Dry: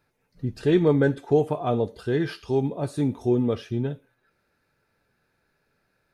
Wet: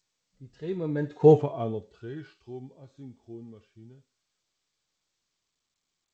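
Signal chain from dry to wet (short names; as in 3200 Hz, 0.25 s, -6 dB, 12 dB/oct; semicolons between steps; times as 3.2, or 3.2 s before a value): Doppler pass-by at 1.33, 20 m/s, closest 1.5 m; harmonic-percussive split percussive -8 dB; gain +7 dB; G.722 64 kbps 16000 Hz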